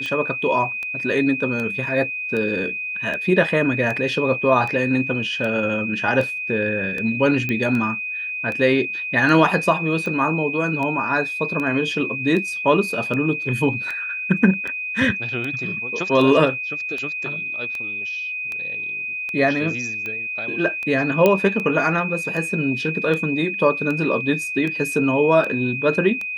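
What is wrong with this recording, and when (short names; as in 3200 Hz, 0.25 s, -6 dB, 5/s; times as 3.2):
tick 78 rpm -16 dBFS
tone 2500 Hz -25 dBFS
7.49 pop -11 dBFS
21.26 pop -4 dBFS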